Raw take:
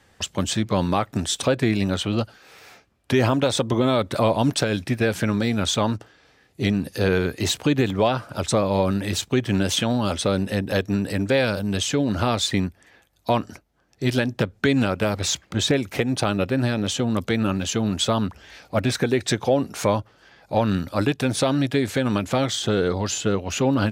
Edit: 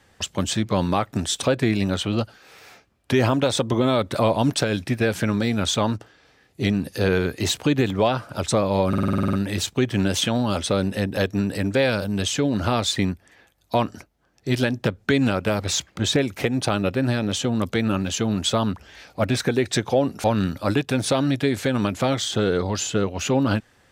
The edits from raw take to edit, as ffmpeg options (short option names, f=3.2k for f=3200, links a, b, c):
-filter_complex "[0:a]asplit=11[a][b][c][d][e][f][g][h][i][j][k];[a]atrim=end=8.932[l];[b]atrim=start=8.878:end=8.932[m];[c]atrim=start=8.878:end=8.932[n];[d]atrim=start=8.878:end=8.932[o];[e]atrim=start=8.878:end=8.932[p];[f]atrim=start=8.878:end=8.932[q];[g]atrim=start=8.878:end=8.932[r];[h]atrim=start=8.878:end=8.932[s];[i]atrim=start=8.878:end=8.932[t];[j]atrim=start=8.878:end=19.792[u];[k]atrim=start=20.548[v];[l][m]acrossfade=d=0.004:c1=hsin:c2=hsin[w];[w][n]acrossfade=d=0.004:c1=hsin:c2=hsin[x];[x][o]acrossfade=d=0.004:c1=hsin:c2=hsin[y];[y][p]acrossfade=d=0.004:c1=hsin:c2=hsin[z];[z][q]acrossfade=d=0.004:c1=hsin:c2=hsin[aa];[aa][r]acrossfade=d=0.004:c1=hsin:c2=hsin[ab];[ab][s]acrossfade=d=0.004:c1=hsin:c2=hsin[ac];[ac][t]acrossfade=d=0.004:c1=hsin:c2=hsin[ad];[ad][u]acrossfade=d=0.004:c1=hsin:c2=hsin[ae];[ae][v]acrossfade=d=0.004:c1=hsin:c2=hsin"